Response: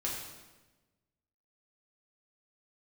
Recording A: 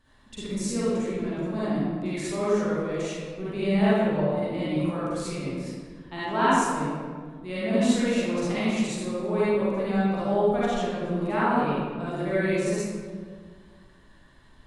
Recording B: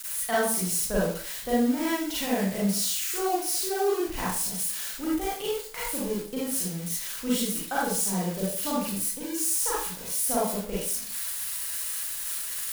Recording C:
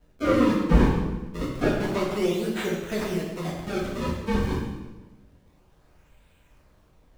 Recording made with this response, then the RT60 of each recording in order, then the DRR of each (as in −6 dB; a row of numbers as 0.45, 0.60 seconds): C; 1.8, 0.50, 1.2 seconds; −10.5, −8.0, −4.5 decibels